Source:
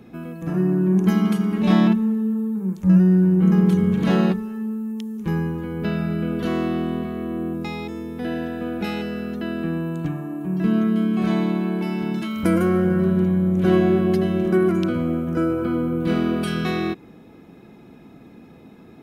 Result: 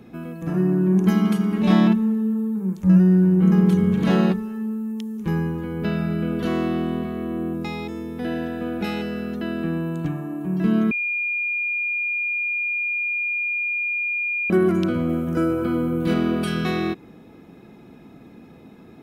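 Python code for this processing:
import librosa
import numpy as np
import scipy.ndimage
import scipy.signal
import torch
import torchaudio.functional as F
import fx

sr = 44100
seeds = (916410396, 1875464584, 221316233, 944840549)

y = fx.high_shelf(x, sr, hz=4500.0, db=5.5, at=(15.09, 16.14))
y = fx.edit(y, sr, fx.bleep(start_s=10.91, length_s=3.59, hz=2420.0, db=-21.5), tone=tone)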